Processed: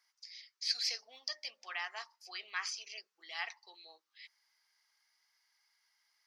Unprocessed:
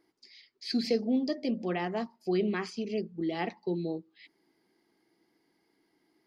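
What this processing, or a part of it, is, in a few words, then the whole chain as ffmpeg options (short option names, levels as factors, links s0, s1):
headphones lying on a table: -af "highpass=f=1100:w=0.5412,highpass=f=1100:w=1.3066,equalizer=f=5800:t=o:w=0.42:g=11"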